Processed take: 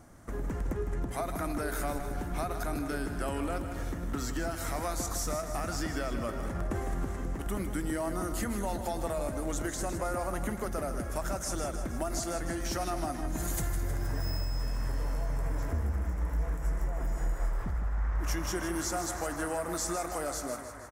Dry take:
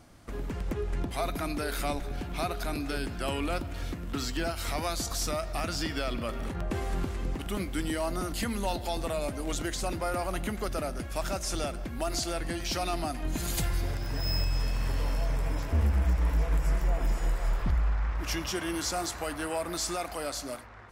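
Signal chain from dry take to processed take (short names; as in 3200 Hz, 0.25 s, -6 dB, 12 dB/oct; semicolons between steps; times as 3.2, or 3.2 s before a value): band shelf 3400 Hz -9.5 dB 1.3 oct; compressor, threshold -30 dBFS, peak gain reduction 8 dB; on a send: feedback echo 0.157 s, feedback 57%, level -9.5 dB; on the sum: gain +1 dB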